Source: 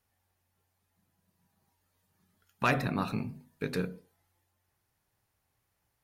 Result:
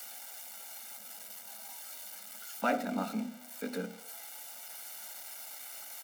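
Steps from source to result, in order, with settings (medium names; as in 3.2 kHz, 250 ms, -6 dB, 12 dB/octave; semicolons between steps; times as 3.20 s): zero-crossing glitches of -24.5 dBFS; steep high-pass 210 Hz 72 dB/octave; tilt EQ -3.5 dB/octave; comb 1.4 ms, depth 87%; trim -5 dB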